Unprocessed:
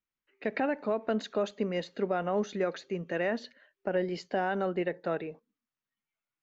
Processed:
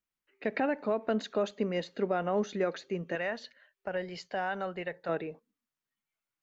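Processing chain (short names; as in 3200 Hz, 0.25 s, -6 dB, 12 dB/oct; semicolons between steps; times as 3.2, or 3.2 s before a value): 3.15–5.09 bell 290 Hz -13 dB 1.3 oct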